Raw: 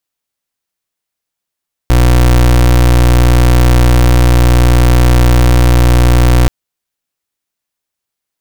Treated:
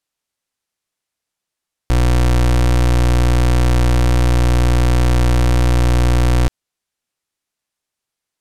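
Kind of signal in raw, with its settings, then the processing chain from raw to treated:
pulse 60.7 Hz, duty 29% -6.5 dBFS 4.58 s
low-pass 11 kHz 12 dB/octave; peak limiter -11 dBFS

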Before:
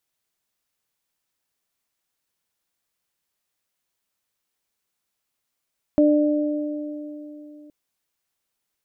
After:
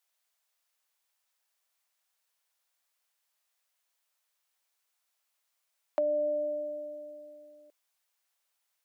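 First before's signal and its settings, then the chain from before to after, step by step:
additive tone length 1.72 s, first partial 298 Hz, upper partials -3 dB, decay 3.44 s, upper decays 2.82 s, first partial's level -13.5 dB
high-pass 560 Hz 24 dB/octave; compression, threshold -26 dBFS

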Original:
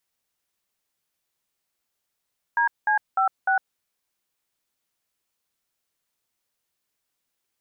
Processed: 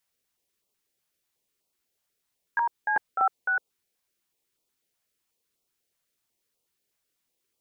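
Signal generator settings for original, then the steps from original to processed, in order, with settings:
DTMF "DC56", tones 106 ms, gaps 195 ms, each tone -20.5 dBFS
peaking EQ 430 Hz +7.5 dB 0.9 oct; step-sequenced notch 8.1 Hz 380–1700 Hz

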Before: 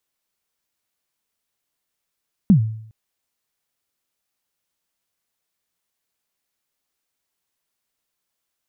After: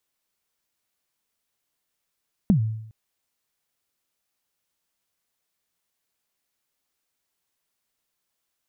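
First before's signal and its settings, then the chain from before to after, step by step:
kick drum length 0.41 s, from 220 Hz, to 110 Hz, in 100 ms, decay 0.65 s, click off, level -6 dB
compression, threshold -17 dBFS

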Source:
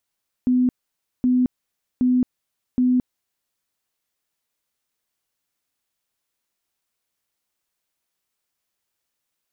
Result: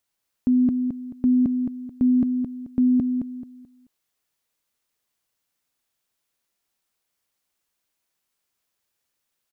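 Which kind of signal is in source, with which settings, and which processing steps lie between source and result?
tone bursts 251 Hz, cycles 55, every 0.77 s, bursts 4, -14.5 dBFS
feedback delay 217 ms, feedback 30%, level -6 dB

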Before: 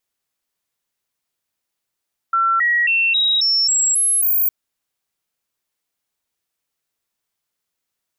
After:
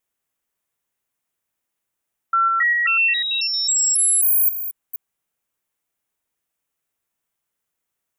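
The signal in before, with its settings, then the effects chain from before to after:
stepped sine 1.35 kHz up, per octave 2, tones 8, 0.27 s, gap 0.00 s -13.5 dBFS
chunks repeated in reverse 248 ms, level -10 dB; peaking EQ 4.5 kHz -8.5 dB 0.77 oct

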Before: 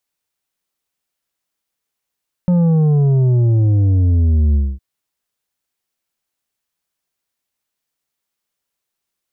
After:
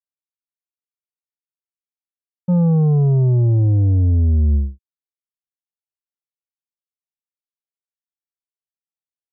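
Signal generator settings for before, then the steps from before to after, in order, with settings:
sub drop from 180 Hz, over 2.31 s, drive 7 dB, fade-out 0.24 s, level -11 dB
local Wiener filter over 25 samples; expander -10 dBFS; in parallel at 0 dB: peak limiter -24 dBFS

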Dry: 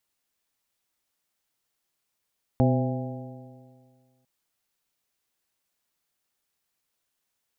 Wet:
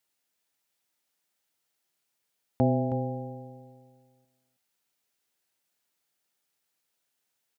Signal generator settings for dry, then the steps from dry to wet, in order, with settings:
stretched partials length 1.65 s, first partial 126 Hz, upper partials -1.5/-12/-6.5/-9/-10 dB, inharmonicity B 0.0037, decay 1.90 s, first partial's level -19 dB
high-pass 140 Hz 6 dB/octave; band-stop 1.1 kHz, Q 10; on a send: delay 318 ms -11 dB

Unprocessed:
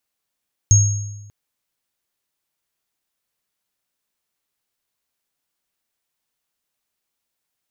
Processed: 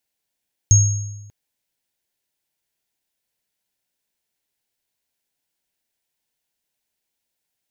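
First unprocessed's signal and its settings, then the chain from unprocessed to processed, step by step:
sine partials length 0.59 s, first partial 103 Hz, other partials 6.54 kHz, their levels -3 dB, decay 1.10 s, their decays 0.81 s, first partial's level -8 dB
peaking EQ 1.2 kHz -14.5 dB 0.24 oct

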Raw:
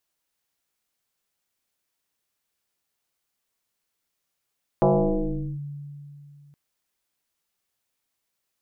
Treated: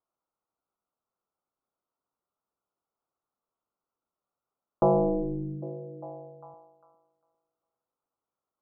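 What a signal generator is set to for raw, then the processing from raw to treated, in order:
FM tone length 1.72 s, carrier 144 Hz, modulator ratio 1.18, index 4.3, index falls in 0.77 s linear, decay 2.86 s, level -14 dB
steep low-pass 1.4 kHz 96 dB/octave; bass shelf 200 Hz -8.5 dB; repeats whose band climbs or falls 401 ms, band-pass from 250 Hz, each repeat 0.7 oct, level -11.5 dB

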